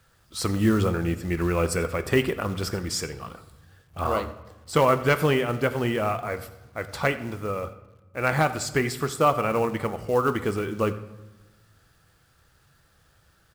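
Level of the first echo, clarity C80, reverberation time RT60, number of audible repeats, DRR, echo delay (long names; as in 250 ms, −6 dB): −19.0 dB, 14.5 dB, 1.1 s, 1, 10.0 dB, 87 ms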